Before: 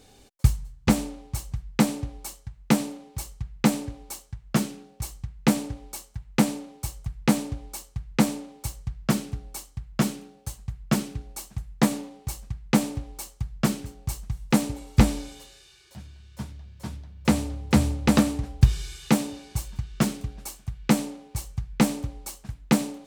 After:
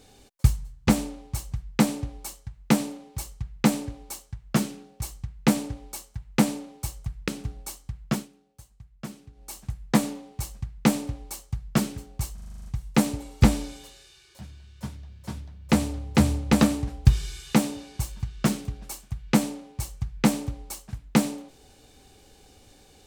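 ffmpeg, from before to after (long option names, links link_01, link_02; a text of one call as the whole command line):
ffmpeg -i in.wav -filter_complex "[0:a]asplit=12[link_01][link_02][link_03][link_04][link_05][link_06][link_07][link_08][link_09][link_10][link_11][link_12];[link_01]atrim=end=7.282[link_13];[link_02]atrim=start=9.158:end=10.16,asetpts=PTS-STARTPTS,afade=type=out:start_time=0.752:duration=0.25:silence=0.188365[link_14];[link_03]atrim=start=10.16:end=11.21,asetpts=PTS-STARTPTS,volume=-14.5dB[link_15];[link_04]atrim=start=11.21:end=14.262,asetpts=PTS-STARTPTS,afade=type=in:duration=0.25:silence=0.188365[link_16];[link_05]atrim=start=14.218:end=14.262[link_17];[link_06]atrim=start=14.218:end=14.262[link_18];[link_07]atrim=start=14.218:end=14.262[link_19];[link_08]atrim=start=14.218:end=14.262[link_20];[link_09]atrim=start=14.218:end=14.262[link_21];[link_10]atrim=start=14.218:end=14.262[link_22];[link_11]atrim=start=14.218:end=14.262[link_23];[link_12]atrim=start=14.218[link_24];[link_14][link_15][link_16]concat=n=3:v=0:a=1[link_25];[link_13][link_25]acrossfade=duration=0.004:curve1=hsin:curve2=hsin[link_26];[link_26][link_17]acrossfade=duration=0.004:curve1=hsin:curve2=hsin[link_27];[link_27][link_18]acrossfade=duration=0.004:curve1=hsin:curve2=hsin[link_28];[link_28][link_19]acrossfade=duration=0.004:curve1=hsin:curve2=hsin[link_29];[link_29][link_20]acrossfade=duration=0.004:curve1=hsin:curve2=hsin[link_30];[link_30][link_21]acrossfade=duration=0.004:curve1=hsin:curve2=hsin[link_31];[link_31][link_22]acrossfade=duration=0.004:curve1=hsin:curve2=hsin[link_32];[link_32][link_23]acrossfade=duration=0.004:curve1=hsin:curve2=hsin[link_33];[link_33][link_24]acrossfade=duration=0.004:curve1=hsin:curve2=hsin" out.wav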